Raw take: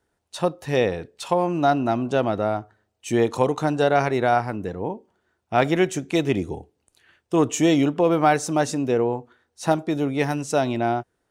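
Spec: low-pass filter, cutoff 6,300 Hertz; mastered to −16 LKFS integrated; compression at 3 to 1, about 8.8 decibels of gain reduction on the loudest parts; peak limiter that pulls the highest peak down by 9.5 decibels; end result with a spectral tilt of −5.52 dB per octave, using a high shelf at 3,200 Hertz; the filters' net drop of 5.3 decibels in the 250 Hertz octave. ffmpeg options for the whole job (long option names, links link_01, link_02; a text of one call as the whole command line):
ffmpeg -i in.wav -af "lowpass=6300,equalizer=frequency=250:width_type=o:gain=-7.5,highshelf=frequency=3200:gain=-3.5,acompressor=threshold=-27dB:ratio=3,volume=18.5dB,alimiter=limit=-4.5dB:level=0:latency=1" out.wav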